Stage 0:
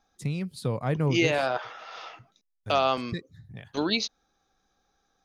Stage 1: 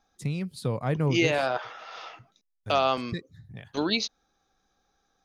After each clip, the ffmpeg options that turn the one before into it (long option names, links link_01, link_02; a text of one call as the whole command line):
ffmpeg -i in.wav -af anull out.wav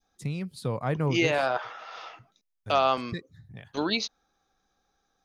ffmpeg -i in.wav -af "adynamicequalizer=threshold=0.0112:dfrequency=1100:dqfactor=0.74:tfrequency=1100:tqfactor=0.74:attack=5:release=100:ratio=0.375:range=2:mode=boostabove:tftype=bell,volume=-2dB" out.wav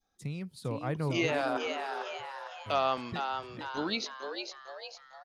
ffmpeg -i in.wav -filter_complex "[0:a]asplit=7[link_01][link_02][link_03][link_04][link_05][link_06][link_07];[link_02]adelay=453,afreqshift=130,volume=-6dB[link_08];[link_03]adelay=906,afreqshift=260,volume=-11.8dB[link_09];[link_04]adelay=1359,afreqshift=390,volume=-17.7dB[link_10];[link_05]adelay=1812,afreqshift=520,volume=-23.5dB[link_11];[link_06]adelay=2265,afreqshift=650,volume=-29.4dB[link_12];[link_07]adelay=2718,afreqshift=780,volume=-35.2dB[link_13];[link_01][link_08][link_09][link_10][link_11][link_12][link_13]amix=inputs=7:normalize=0,volume=-5.5dB" out.wav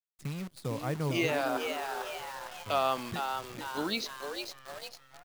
ffmpeg -i in.wav -af "acrusher=bits=8:dc=4:mix=0:aa=0.000001" out.wav